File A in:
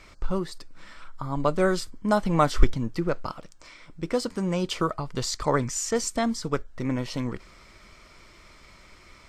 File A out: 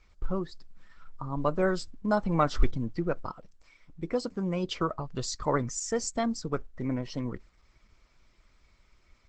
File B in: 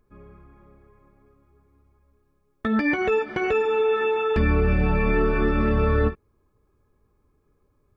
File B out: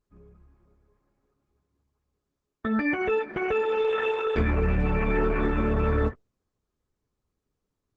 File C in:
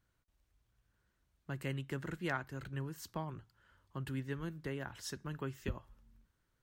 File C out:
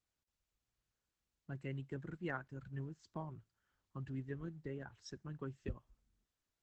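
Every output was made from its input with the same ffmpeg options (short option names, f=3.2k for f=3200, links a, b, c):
-af "acontrast=21,afftdn=nr=12:nf=-34,volume=-8dB" -ar 48000 -c:a libopus -b:a 12k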